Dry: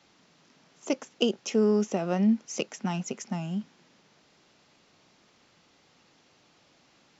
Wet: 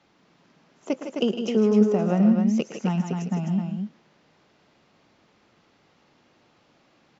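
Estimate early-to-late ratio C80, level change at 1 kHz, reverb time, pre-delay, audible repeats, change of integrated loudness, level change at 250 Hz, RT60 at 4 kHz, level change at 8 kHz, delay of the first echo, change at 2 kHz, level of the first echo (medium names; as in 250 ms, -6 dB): no reverb, +2.5 dB, no reverb, no reverb, 3, +5.0 dB, +6.5 dB, no reverb, no reading, 110 ms, 0.0 dB, -14.0 dB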